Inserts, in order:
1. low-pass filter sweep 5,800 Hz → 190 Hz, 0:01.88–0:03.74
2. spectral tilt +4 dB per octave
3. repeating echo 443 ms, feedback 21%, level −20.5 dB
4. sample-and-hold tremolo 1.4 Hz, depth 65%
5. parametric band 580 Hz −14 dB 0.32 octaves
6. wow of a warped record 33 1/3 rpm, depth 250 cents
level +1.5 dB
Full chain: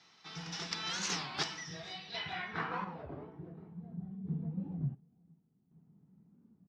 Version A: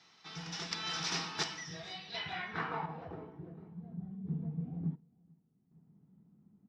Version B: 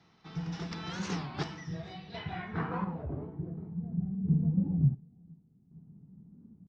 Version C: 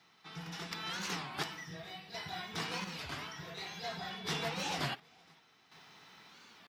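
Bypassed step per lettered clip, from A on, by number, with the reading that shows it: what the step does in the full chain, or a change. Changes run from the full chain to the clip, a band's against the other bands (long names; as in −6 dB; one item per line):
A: 6, 8 kHz band −2.0 dB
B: 2, 4 kHz band −12.0 dB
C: 1, 125 Hz band −5.5 dB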